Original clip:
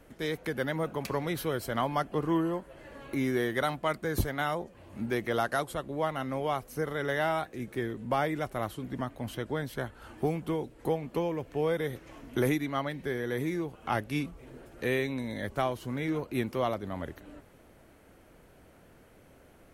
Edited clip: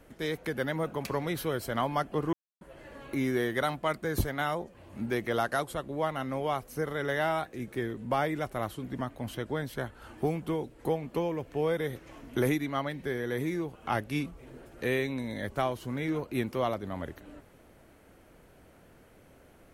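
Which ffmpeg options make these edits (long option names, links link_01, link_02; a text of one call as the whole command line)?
ffmpeg -i in.wav -filter_complex "[0:a]asplit=3[link_01][link_02][link_03];[link_01]atrim=end=2.33,asetpts=PTS-STARTPTS,afade=type=out:start_time=2.326:duration=0.004:curve=hsin[link_04];[link_02]atrim=start=2.33:end=2.61,asetpts=PTS-STARTPTS,volume=0[link_05];[link_03]atrim=start=2.61,asetpts=PTS-STARTPTS,afade=type=in:duration=0.004:curve=hsin[link_06];[link_04][link_05][link_06]concat=n=3:v=0:a=1" out.wav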